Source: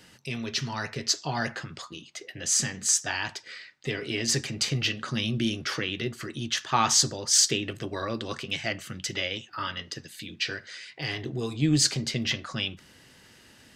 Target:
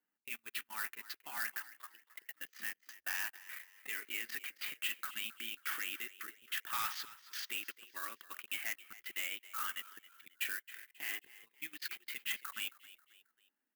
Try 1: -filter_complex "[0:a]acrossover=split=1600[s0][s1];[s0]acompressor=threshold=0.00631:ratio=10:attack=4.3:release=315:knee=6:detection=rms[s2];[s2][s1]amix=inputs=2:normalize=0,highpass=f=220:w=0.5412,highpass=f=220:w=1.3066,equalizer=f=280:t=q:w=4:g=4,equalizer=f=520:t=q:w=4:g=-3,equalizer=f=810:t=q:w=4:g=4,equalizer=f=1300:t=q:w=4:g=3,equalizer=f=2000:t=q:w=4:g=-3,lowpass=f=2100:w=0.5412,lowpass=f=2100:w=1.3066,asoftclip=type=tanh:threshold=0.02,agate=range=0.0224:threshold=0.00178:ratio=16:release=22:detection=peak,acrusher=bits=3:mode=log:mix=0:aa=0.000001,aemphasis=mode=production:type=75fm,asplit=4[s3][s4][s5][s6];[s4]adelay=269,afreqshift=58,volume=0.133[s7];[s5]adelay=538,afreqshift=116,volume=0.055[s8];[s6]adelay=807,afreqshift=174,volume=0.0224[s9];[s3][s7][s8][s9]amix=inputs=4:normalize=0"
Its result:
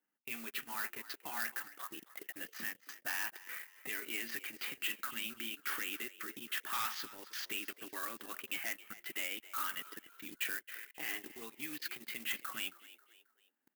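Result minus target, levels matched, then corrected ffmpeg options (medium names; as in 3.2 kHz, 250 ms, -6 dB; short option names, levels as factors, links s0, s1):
compression: peak gain reduction -9 dB
-filter_complex "[0:a]acrossover=split=1600[s0][s1];[s0]acompressor=threshold=0.002:ratio=10:attack=4.3:release=315:knee=6:detection=rms[s2];[s2][s1]amix=inputs=2:normalize=0,highpass=f=220:w=0.5412,highpass=f=220:w=1.3066,equalizer=f=280:t=q:w=4:g=4,equalizer=f=520:t=q:w=4:g=-3,equalizer=f=810:t=q:w=4:g=4,equalizer=f=1300:t=q:w=4:g=3,equalizer=f=2000:t=q:w=4:g=-3,lowpass=f=2100:w=0.5412,lowpass=f=2100:w=1.3066,asoftclip=type=tanh:threshold=0.02,agate=range=0.0224:threshold=0.00178:ratio=16:release=22:detection=peak,acrusher=bits=3:mode=log:mix=0:aa=0.000001,aemphasis=mode=production:type=75fm,asplit=4[s3][s4][s5][s6];[s4]adelay=269,afreqshift=58,volume=0.133[s7];[s5]adelay=538,afreqshift=116,volume=0.055[s8];[s6]adelay=807,afreqshift=174,volume=0.0224[s9];[s3][s7][s8][s9]amix=inputs=4:normalize=0"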